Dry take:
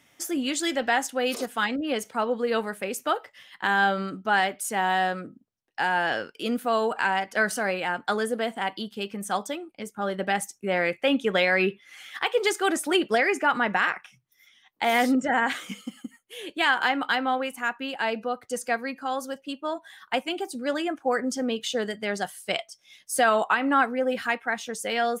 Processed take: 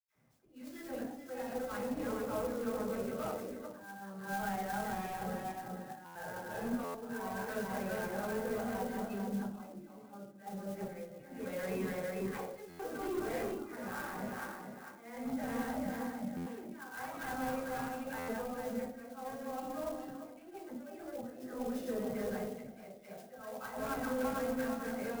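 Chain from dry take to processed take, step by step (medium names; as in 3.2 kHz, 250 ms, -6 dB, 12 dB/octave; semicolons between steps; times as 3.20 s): backward echo that repeats 224 ms, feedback 56%, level -2.5 dB; peaking EQ 3.1 kHz -12.5 dB 0.63 oct; slow attack 764 ms; phase dispersion lows, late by 68 ms, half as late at 970 Hz; 9.69–10.38 s: feedback comb 140 Hz, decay 0.54 s, harmonics all, mix 80%; saturation -25.5 dBFS, distortion -10 dB; reverberation RT60 0.55 s, pre-delay 77 ms; buffer glitch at 6.05/6.84/12.69/16.36/18.18 s, samples 512, times 8; sampling jitter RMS 0.036 ms; trim +4 dB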